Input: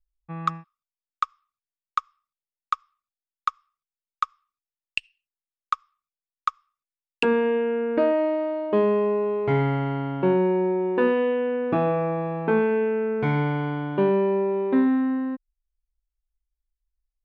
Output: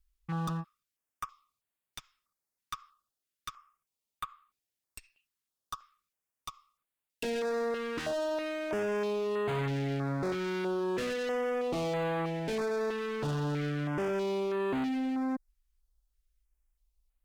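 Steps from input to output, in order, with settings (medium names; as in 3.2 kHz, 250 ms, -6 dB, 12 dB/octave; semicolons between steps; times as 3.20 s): saturation -26 dBFS, distortion -8 dB; peak limiter -31 dBFS, peak gain reduction 5 dB; one-sided clip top -39.5 dBFS, bottom -36.5 dBFS; step-sequenced notch 3.1 Hz 630–5500 Hz; trim +7.5 dB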